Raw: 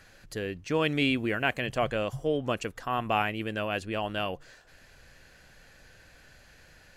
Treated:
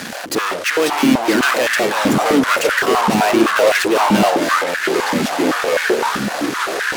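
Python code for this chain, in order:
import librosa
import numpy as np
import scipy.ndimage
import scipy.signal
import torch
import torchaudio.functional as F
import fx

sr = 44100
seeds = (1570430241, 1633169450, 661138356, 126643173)

y = fx.fuzz(x, sr, gain_db=53.0, gate_db=-56.0)
y = fx.echo_pitch(y, sr, ms=459, semitones=-4, count=3, db_per_echo=-3.0)
y = fx.filter_held_highpass(y, sr, hz=7.8, low_hz=220.0, high_hz=1600.0)
y = y * librosa.db_to_amplitude(-5.5)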